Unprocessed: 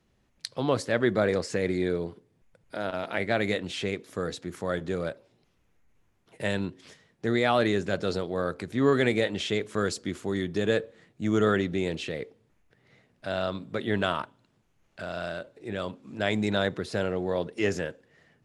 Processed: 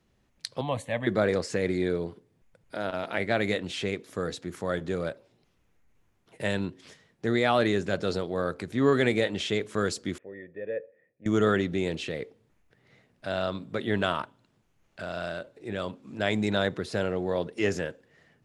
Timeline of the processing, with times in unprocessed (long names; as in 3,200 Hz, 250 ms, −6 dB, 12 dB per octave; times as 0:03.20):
0:00.61–0:01.07: phaser with its sweep stopped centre 1,400 Hz, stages 6
0:10.18–0:11.26: formant resonators in series e